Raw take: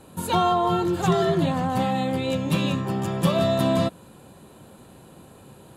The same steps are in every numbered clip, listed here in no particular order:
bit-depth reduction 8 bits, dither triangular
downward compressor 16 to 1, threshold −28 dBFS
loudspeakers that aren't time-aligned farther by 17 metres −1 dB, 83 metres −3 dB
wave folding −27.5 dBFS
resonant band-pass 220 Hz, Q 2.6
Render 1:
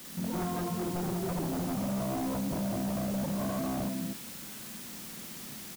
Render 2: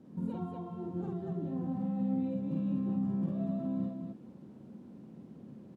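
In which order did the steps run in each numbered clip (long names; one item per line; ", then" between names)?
resonant band-pass, then downward compressor, then bit-depth reduction, then loudspeakers that aren't time-aligned, then wave folding
downward compressor, then bit-depth reduction, then resonant band-pass, then wave folding, then loudspeakers that aren't time-aligned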